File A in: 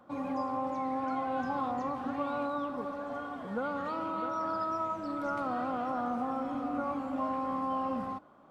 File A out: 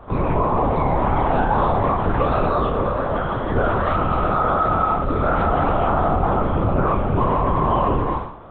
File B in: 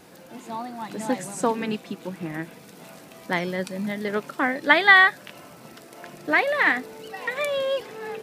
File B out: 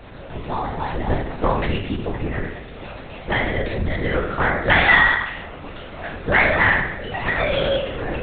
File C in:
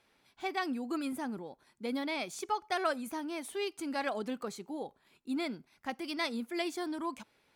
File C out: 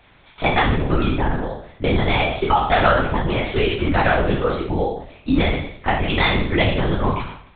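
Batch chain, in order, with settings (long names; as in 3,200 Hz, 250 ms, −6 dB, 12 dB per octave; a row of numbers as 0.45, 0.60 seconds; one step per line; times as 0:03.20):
peak hold with a decay on every bin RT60 0.67 s
in parallel at +3 dB: downward compressor, threshold −31 dBFS
on the sum: soft clipping −9 dBFS
linear-prediction vocoder at 8 kHz whisper
loudness normalisation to −20 LKFS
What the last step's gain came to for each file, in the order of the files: +8.0, +1.0, +9.5 decibels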